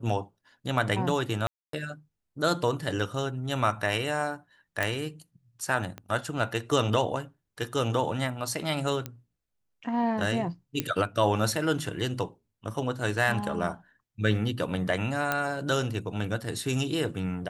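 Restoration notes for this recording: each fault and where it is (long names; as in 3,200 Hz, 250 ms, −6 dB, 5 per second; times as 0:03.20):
0:01.47–0:01.73: drop-out 263 ms
0:04.83: click
0:05.98: click −24 dBFS
0:09.06: click −18 dBFS
0:10.80: click −11 dBFS
0:15.32: click −11 dBFS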